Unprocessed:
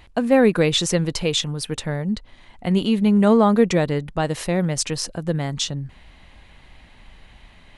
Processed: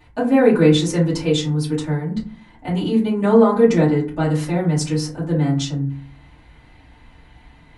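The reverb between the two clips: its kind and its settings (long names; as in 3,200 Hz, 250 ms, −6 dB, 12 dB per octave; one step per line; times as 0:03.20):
feedback delay network reverb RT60 0.44 s, low-frequency decay 1.5×, high-frequency decay 0.4×, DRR −9.5 dB
level −10 dB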